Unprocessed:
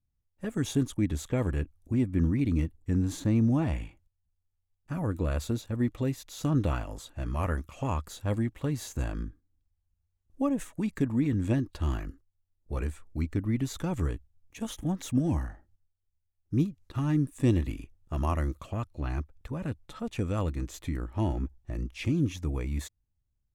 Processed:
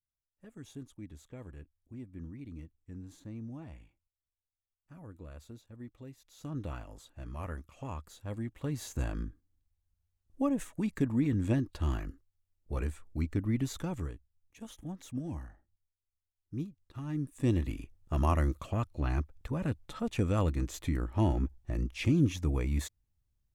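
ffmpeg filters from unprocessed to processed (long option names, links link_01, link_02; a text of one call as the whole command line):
ffmpeg -i in.wav -af "volume=10dB,afade=type=in:start_time=6.14:duration=0.66:silence=0.375837,afade=type=in:start_time=8.34:duration=0.62:silence=0.398107,afade=type=out:start_time=13.7:duration=0.44:silence=0.354813,afade=type=in:start_time=17.05:duration=1.08:silence=0.251189" out.wav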